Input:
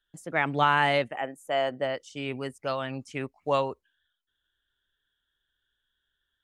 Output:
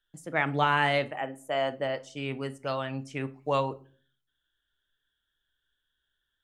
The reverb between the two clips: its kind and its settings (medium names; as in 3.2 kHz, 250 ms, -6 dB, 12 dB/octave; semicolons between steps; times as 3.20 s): simulated room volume 280 m³, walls furnished, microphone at 0.51 m; trim -1.5 dB